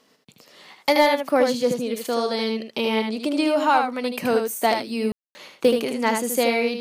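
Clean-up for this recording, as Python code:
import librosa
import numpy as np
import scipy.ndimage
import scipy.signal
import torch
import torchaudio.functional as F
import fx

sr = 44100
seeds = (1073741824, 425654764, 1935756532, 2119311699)

y = fx.fix_declip(x, sr, threshold_db=-7.5)
y = fx.fix_ambience(y, sr, seeds[0], print_start_s=0.0, print_end_s=0.5, start_s=5.12, end_s=5.35)
y = fx.fix_echo_inverse(y, sr, delay_ms=77, level_db=-5.5)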